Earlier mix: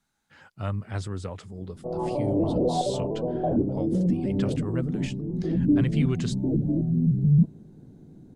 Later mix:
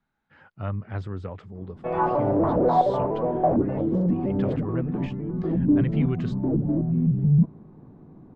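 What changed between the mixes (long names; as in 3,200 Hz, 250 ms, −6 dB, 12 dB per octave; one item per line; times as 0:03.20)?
background: remove Gaussian smoothing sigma 13 samples
master: add low-pass filter 2,200 Hz 12 dB per octave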